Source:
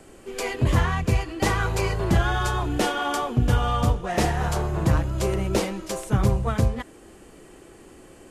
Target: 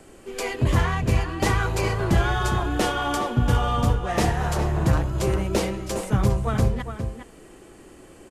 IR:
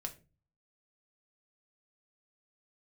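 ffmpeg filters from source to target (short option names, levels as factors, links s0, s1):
-filter_complex "[0:a]asplit=2[s0][s1];[s1]adelay=408.2,volume=0.398,highshelf=f=4000:g=-9.18[s2];[s0][s2]amix=inputs=2:normalize=0"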